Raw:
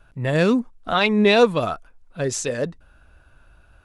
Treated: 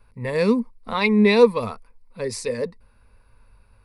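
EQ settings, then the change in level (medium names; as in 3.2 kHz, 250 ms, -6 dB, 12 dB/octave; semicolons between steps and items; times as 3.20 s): rippled EQ curve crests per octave 0.91, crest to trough 14 dB; -4.5 dB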